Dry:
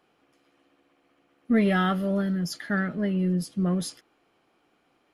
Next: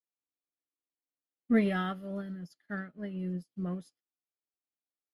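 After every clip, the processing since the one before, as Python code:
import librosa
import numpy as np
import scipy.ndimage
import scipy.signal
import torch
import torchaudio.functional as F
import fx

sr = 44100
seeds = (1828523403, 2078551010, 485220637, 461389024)

y = fx.upward_expand(x, sr, threshold_db=-44.0, expansion=2.5)
y = y * librosa.db_to_amplitude(-2.5)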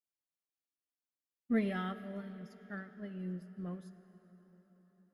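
y = fx.rev_plate(x, sr, seeds[0], rt60_s=5.0, hf_ratio=0.8, predelay_ms=0, drr_db=12.5)
y = y * librosa.db_to_amplitude(-6.0)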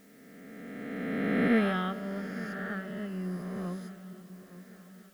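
y = fx.spec_swells(x, sr, rise_s=2.53)
y = fx.dmg_noise_colour(y, sr, seeds[1], colour='white', level_db=-70.0)
y = fx.echo_swing(y, sr, ms=1149, ratio=3, feedback_pct=38, wet_db=-17)
y = y * librosa.db_to_amplitude(4.5)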